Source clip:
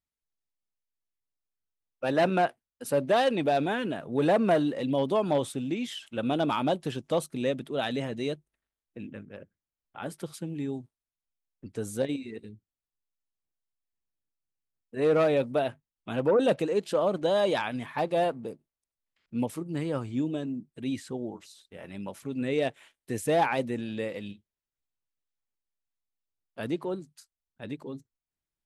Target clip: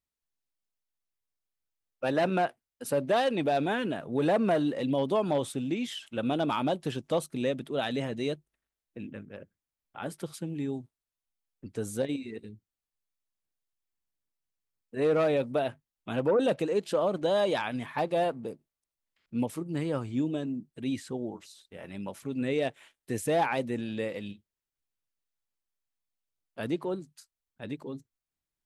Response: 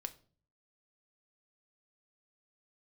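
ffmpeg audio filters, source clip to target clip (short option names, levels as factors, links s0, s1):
-af "alimiter=limit=0.126:level=0:latency=1:release=167"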